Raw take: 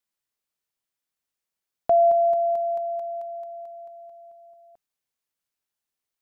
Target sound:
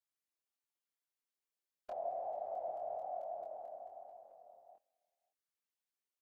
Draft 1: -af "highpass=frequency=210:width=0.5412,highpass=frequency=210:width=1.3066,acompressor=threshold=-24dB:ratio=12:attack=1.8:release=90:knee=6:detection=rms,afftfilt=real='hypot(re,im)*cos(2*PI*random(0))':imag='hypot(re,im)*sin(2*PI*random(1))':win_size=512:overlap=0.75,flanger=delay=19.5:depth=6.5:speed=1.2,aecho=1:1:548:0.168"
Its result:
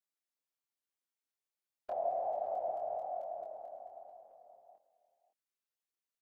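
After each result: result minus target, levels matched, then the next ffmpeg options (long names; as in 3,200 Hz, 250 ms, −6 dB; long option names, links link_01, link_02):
echo-to-direct +11.5 dB; downward compressor: peak gain reduction −5.5 dB
-af "highpass=frequency=210:width=0.5412,highpass=frequency=210:width=1.3066,acompressor=threshold=-24dB:ratio=12:attack=1.8:release=90:knee=6:detection=rms,afftfilt=real='hypot(re,im)*cos(2*PI*random(0))':imag='hypot(re,im)*sin(2*PI*random(1))':win_size=512:overlap=0.75,flanger=delay=19.5:depth=6.5:speed=1.2,aecho=1:1:548:0.0447"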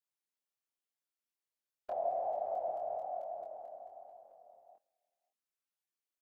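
downward compressor: peak gain reduction −5.5 dB
-af "highpass=frequency=210:width=0.5412,highpass=frequency=210:width=1.3066,acompressor=threshold=-30dB:ratio=12:attack=1.8:release=90:knee=6:detection=rms,afftfilt=real='hypot(re,im)*cos(2*PI*random(0))':imag='hypot(re,im)*sin(2*PI*random(1))':win_size=512:overlap=0.75,flanger=delay=19.5:depth=6.5:speed=1.2,aecho=1:1:548:0.0447"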